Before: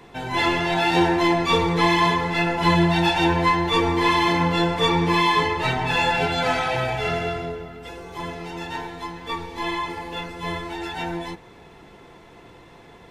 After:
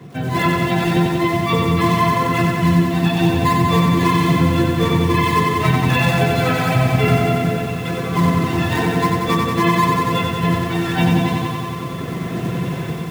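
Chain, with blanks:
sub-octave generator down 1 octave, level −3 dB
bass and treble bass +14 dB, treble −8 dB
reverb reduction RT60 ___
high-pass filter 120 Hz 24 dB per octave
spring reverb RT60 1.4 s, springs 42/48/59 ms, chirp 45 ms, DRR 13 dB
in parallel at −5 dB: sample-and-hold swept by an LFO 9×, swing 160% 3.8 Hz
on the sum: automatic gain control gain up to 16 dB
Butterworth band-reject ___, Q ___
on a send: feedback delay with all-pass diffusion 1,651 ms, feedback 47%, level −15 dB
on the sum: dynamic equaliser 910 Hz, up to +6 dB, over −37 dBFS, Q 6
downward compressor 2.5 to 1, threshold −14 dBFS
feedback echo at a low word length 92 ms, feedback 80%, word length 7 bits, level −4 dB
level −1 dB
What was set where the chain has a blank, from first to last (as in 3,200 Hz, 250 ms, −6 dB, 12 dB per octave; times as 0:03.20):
1.8 s, 880 Hz, 6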